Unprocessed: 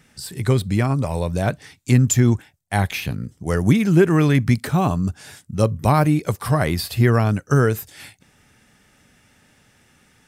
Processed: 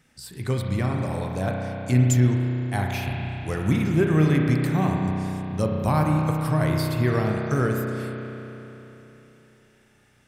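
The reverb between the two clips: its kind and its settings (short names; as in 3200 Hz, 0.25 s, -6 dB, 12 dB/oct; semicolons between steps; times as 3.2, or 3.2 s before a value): spring tank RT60 3.5 s, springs 32 ms, chirp 35 ms, DRR 0 dB; gain -7.5 dB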